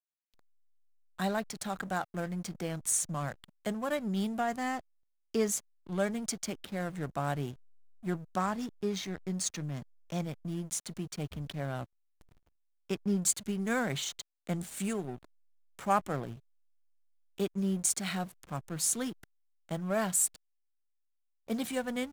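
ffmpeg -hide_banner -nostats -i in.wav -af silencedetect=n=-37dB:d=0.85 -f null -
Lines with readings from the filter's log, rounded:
silence_start: 0.00
silence_end: 1.19 | silence_duration: 1.19
silence_start: 11.83
silence_end: 12.90 | silence_duration: 1.06
silence_start: 16.33
silence_end: 17.38 | silence_duration: 1.05
silence_start: 20.27
silence_end: 21.48 | silence_duration: 1.21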